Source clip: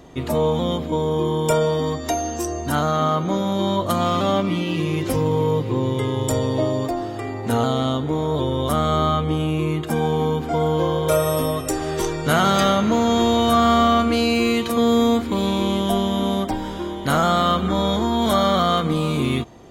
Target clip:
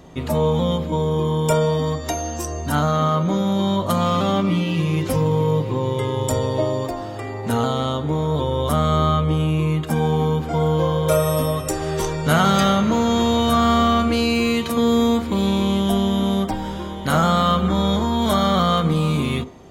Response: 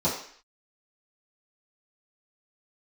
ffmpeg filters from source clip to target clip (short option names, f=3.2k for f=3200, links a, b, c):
-filter_complex "[0:a]asplit=2[a][b];[1:a]atrim=start_sample=2205,lowpass=2.4k[c];[b][c]afir=irnorm=-1:irlink=0,volume=-23.5dB[d];[a][d]amix=inputs=2:normalize=0"